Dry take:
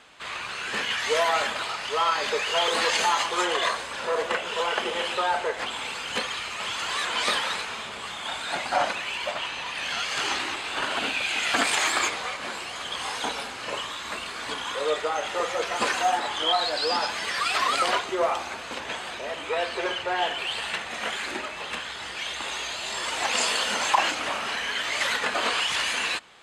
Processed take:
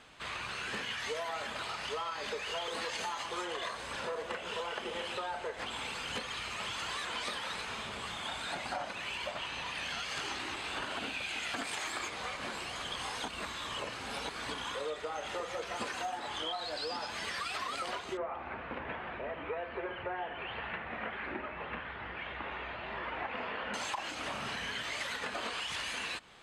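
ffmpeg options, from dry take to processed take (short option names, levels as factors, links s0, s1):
-filter_complex "[0:a]asettb=1/sr,asplit=3[s0][s1][s2];[s0]atrim=end=18.174[s3];[s1]atrim=start=18.17:end=23.74,asetpts=PTS-STARTPTS,afade=t=in:d=0.004:c=qsin,afade=t=out:st=5.566:d=0.004:c=qsin,lowpass=f=2300:w=0.5412,lowpass=f=2300:w=1.3066[s4];[s2]atrim=start=23.736[s5];[s3][s4]acrossfade=d=0.004:c1=hsin:c2=qsin[s6];[s6][s5]acrossfade=d=0.004:c1=qsin:c2=hsin,asettb=1/sr,asplit=3[s7][s8][s9];[s7]atrim=end=24.314[s10];[s8]atrim=start=24.31:end=24.83,asetpts=PTS-STARTPTS,afade=t=in:d=0.004:c=qsin,afade=t=out:st=0.516:d=0.004:c=qsin,equalizer=f=130:t=o:w=1.3:g=9[s11];[s9]atrim=start=24.826[s12];[s10][s11]acrossfade=d=0.004:c1=hsin:c2=qsin[s13];[s13][s12]acrossfade=d=0.004:c1=qsin:c2=hsin,asplit=3[s14][s15][s16];[s14]atrim=end=13.282[s17];[s15]atrim=start=13.278:end=14.292,asetpts=PTS-STARTPTS,areverse[s18];[s16]atrim=start=14.288[s19];[s17][s18]acrossfade=d=0.004:c1=hsin:c2=hsin[s20];[s20][s19]acrossfade=d=0.004:c1=hsin:c2=hsin,lowshelf=f=220:g=10,bandreject=f=7100:w=25,acompressor=threshold=0.0316:ratio=6,volume=0.562"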